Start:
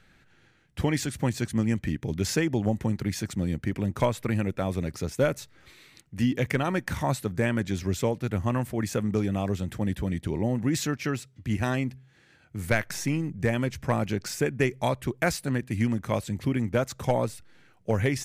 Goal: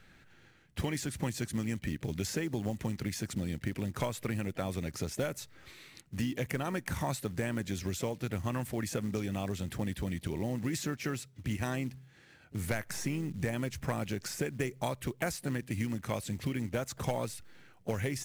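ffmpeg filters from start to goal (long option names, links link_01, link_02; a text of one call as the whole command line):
ffmpeg -i in.wav -filter_complex "[0:a]acrossover=split=1800|6100[link_01][link_02][link_03];[link_01]acompressor=threshold=-32dB:ratio=4[link_04];[link_02]acompressor=threshold=-45dB:ratio=4[link_05];[link_03]acompressor=threshold=-42dB:ratio=4[link_06];[link_04][link_05][link_06]amix=inputs=3:normalize=0,acrusher=bits=6:mode=log:mix=0:aa=0.000001,asplit=2[link_07][link_08];[link_08]asetrate=55563,aresample=44100,atempo=0.793701,volume=-17dB[link_09];[link_07][link_09]amix=inputs=2:normalize=0" out.wav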